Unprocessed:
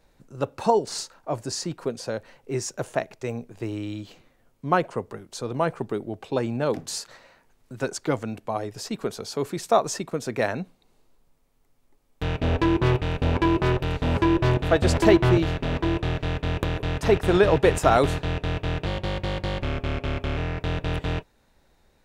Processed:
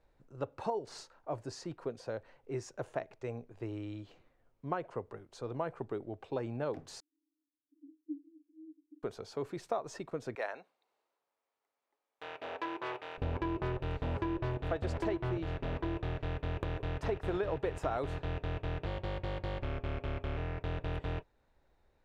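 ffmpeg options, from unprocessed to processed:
ffmpeg -i in.wav -filter_complex "[0:a]asettb=1/sr,asplit=3[link_01][link_02][link_03];[link_01]atrim=end=7.004[link_04];[link_02]atrim=start=7:end=9.03,asetpts=PTS-STARTPTS,afade=type=in:duration=0.004:curve=qsin,afade=type=out:start_time=2.026:duration=0.004:curve=qsin,asuperpass=centerf=300:order=8:qfactor=6.7[link_05];[link_03]atrim=start=9.026[link_06];[link_04][link_05]acrossfade=duration=0.004:curve1=hsin:curve2=qsin[link_07];[link_07][link_06]acrossfade=duration=0.004:curve1=qsin:curve2=hsin,asettb=1/sr,asplit=3[link_08][link_09][link_10];[link_08]atrim=end=10.354[link_11];[link_09]atrim=start=10.35:end=13.18,asetpts=PTS-STARTPTS,afade=type=in:duration=0.004:curve=qsin,afade=type=out:start_time=2.826:duration=0.004:curve=qsin,highpass=640[link_12];[link_10]atrim=start=13.176[link_13];[link_11][link_12]acrossfade=duration=0.004:curve1=hsin:curve2=qsin[link_14];[link_14][link_13]acrossfade=duration=0.004:curve1=qsin:curve2=hsin,lowpass=frequency=1700:poles=1,equalizer=frequency=200:width=1.7:gain=-7,acompressor=threshold=-23dB:ratio=6,volume=-7.5dB" out.wav

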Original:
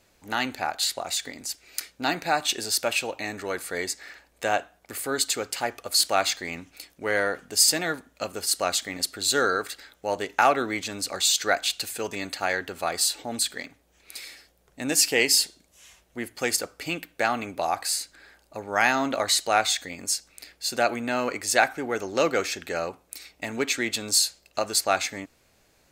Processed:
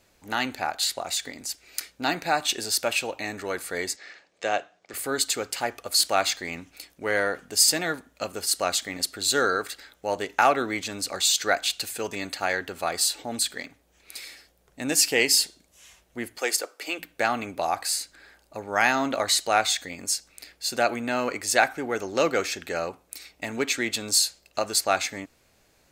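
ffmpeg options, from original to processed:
ffmpeg -i in.wav -filter_complex "[0:a]asettb=1/sr,asplit=3[link_01][link_02][link_03];[link_01]atrim=end=3.964[link_04];[link_02]atrim=start=3.96:end=4.94,asetpts=PTS-STARTPTS,afade=type=in:duration=0.004:curve=qsin,afade=type=out:start_time=0.976:duration=0.004:curve=qsin,highpass=frequency=120:width=0.5412,highpass=frequency=120:width=1.3066,equalizer=frequency=140:width_type=q:width=4:gain=-9,equalizer=frequency=250:width_type=q:width=4:gain=-8,equalizer=frequency=920:width_type=q:width=4:gain=-5,equalizer=frequency=1500:width_type=q:width=4:gain=-3,lowpass=frequency=6800:width=0.5412,lowpass=frequency=6800:width=1.3066[link_05];[link_03]atrim=start=4.936[link_06];[link_04][link_05]acrossfade=duration=0.004:curve1=hsin:curve2=qsin[link_07];[link_07][link_06]acrossfade=duration=0.004:curve1=qsin:curve2=hsin,asettb=1/sr,asplit=3[link_08][link_09][link_10];[link_08]atrim=end=16.384[link_11];[link_09]atrim=start=16.38:end=16.99,asetpts=PTS-STARTPTS,afade=type=in:duration=0.004:curve=qsin,afade=type=out:start_time=0.606:duration=0.004:curve=qsin,highpass=frequency=340:width=0.5412,highpass=frequency=340:width=1.3066[link_12];[link_10]atrim=start=16.986[link_13];[link_11][link_12]acrossfade=duration=0.004:curve1=hsin:curve2=qsin[link_14];[link_14][link_13]acrossfade=duration=0.004:curve1=qsin:curve2=hsin" out.wav

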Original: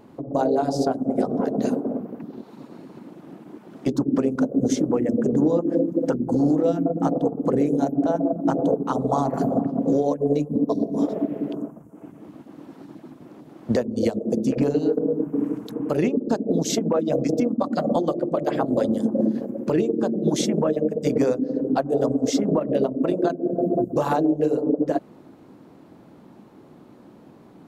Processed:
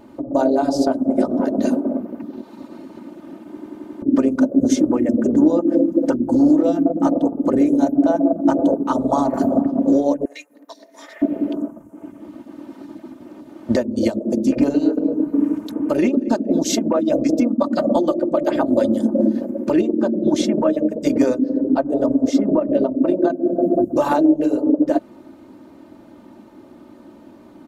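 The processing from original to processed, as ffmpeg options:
ffmpeg -i in.wav -filter_complex "[0:a]asettb=1/sr,asplit=3[link_01][link_02][link_03];[link_01]atrim=end=10.254[link_04];[link_02]atrim=start=10.25:end=11.22,asetpts=PTS-STARTPTS,afade=type=in:duration=0.004:curve=qsin,afade=type=out:start_time=0.966:duration=0.004:curve=qsin,highpass=frequency=1900:width_type=q:width=7.6[link_05];[link_03]atrim=start=11.216[link_06];[link_04][link_05]acrossfade=duration=0.004:curve1=hsin:curve2=qsin[link_07];[link_07][link_06]acrossfade=duration=0.004:curve1=qsin:curve2=hsin,asettb=1/sr,asplit=3[link_08][link_09][link_10];[link_08]atrim=end=14.494[link_11];[link_09]atrim=start=14.49:end=16.69,asetpts=PTS-STARTPTS,afade=type=in:duration=0.004:curve=qsin,afade=type=out:start_time=2.196:duration=0.004:curve=qsin,aecho=1:1:230|460|690:0.0668|0.0274|0.0112,atrim=end_sample=97020[link_12];[link_10]atrim=start=16.686[link_13];[link_11][link_12]acrossfade=duration=0.004:curve1=hsin:curve2=qsin[link_14];[link_14][link_13]acrossfade=duration=0.004:curve1=qsin:curve2=hsin,asettb=1/sr,asplit=3[link_15][link_16][link_17];[link_15]atrim=end=19.814[link_18];[link_16]atrim=start=19.81:end=20.61,asetpts=PTS-STARTPTS,afade=type=in:duration=0.004:curve=qsin,afade=type=out:start_time=0.796:duration=0.004:curve=qsin,highshelf=frequency=5400:gain=-10[link_19];[link_17]atrim=start=20.606[link_20];[link_18][link_19]acrossfade=duration=0.004:curve1=hsin:curve2=qsin[link_21];[link_21][link_20]acrossfade=duration=0.004:curve1=qsin:curve2=hsin,asettb=1/sr,asplit=3[link_22][link_23][link_24];[link_22]atrim=end=21.494[link_25];[link_23]atrim=start=21.49:end=23.36,asetpts=PTS-STARTPTS,afade=type=in:duration=0.004:curve=qsin,afade=type=out:start_time=1.866:duration=0.004:curve=qsin,highshelf=frequency=2000:gain=-9.5[link_26];[link_24]atrim=start=23.356[link_27];[link_25][link_26]acrossfade=duration=0.004:curve1=hsin:curve2=qsin[link_28];[link_28][link_27]acrossfade=duration=0.004:curve1=qsin:curve2=hsin,asplit=7[link_29][link_30][link_31][link_32][link_33][link_34][link_35];[link_29]atrim=end=3.572[link_36];[link_30]atrim=start=3.478:end=3.572[link_37];[link_31]atrim=start=3.478:end=3.572[link_38];[link_32]atrim=start=3.478:end=3.572[link_39];[link_33]atrim=start=3.478:end=3.572[link_40];[link_34]atrim=start=3.478:end=3.572[link_41];[link_35]atrim=start=4.018[link_42];[link_36][link_37]acrossfade=duration=0.004:curve1=hsin:curve2=hsin[link_43];[link_43][link_38]acrossfade=duration=0.004:curve1=hsin:curve2=hsin[link_44];[link_44][link_39]acrossfade=duration=0.004:curve1=hsin:curve2=hsin[link_45];[link_45][link_40]acrossfade=duration=0.004:curve1=hsin:curve2=hsin[link_46];[link_46][link_41]acrossfade=duration=0.004:curve1=hsin:curve2=hsin[link_47];[link_47][link_42]acrossfade=duration=0.004:curve1=hsin:curve2=hsin,aecho=1:1:3.3:0.66,volume=2.5dB" out.wav

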